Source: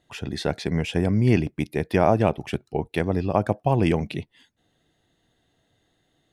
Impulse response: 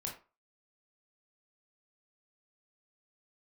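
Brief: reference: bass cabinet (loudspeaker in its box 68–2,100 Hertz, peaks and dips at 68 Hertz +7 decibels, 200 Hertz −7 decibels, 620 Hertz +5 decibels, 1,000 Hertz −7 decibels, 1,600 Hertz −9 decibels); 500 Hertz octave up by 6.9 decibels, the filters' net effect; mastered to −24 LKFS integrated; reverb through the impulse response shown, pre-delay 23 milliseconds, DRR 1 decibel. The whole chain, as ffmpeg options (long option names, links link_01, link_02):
-filter_complex "[0:a]equalizer=frequency=500:width_type=o:gain=6.5,asplit=2[link_01][link_02];[1:a]atrim=start_sample=2205,adelay=23[link_03];[link_02][link_03]afir=irnorm=-1:irlink=0,volume=-0.5dB[link_04];[link_01][link_04]amix=inputs=2:normalize=0,highpass=frequency=68:width=0.5412,highpass=frequency=68:width=1.3066,equalizer=frequency=68:width_type=q:width=4:gain=7,equalizer=frequency=200:width_type=q:width=4:gain=-7,equalizer=frequency=620:width_type=q:width=4:gain=5,equalizer=frequency=1000:width_type=q:width=4:gain=-7,equalizer=frequency=1600:width_type=q:width=4:gain=-9,lowpass=frequency=2100:width=0.5412,lowpass=frequency=2100:width=1.3066,volume=-6dB"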